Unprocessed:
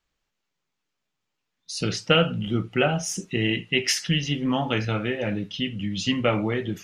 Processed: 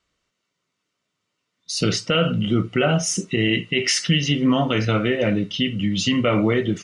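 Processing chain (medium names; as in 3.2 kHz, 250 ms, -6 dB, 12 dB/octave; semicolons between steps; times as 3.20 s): comb of notches 830 Hz; peak limiter -16.5 dBFS, peak gain reduction 11 dB; resampled via 22.05 kHz; trim +7.5 dB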